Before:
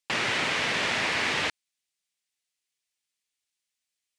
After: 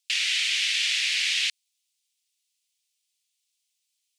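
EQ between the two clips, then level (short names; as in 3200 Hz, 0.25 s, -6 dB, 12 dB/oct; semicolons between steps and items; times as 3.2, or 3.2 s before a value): inverse Chebyshev high-pass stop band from 590 Hz, stop band 70 dB; +7.5 dB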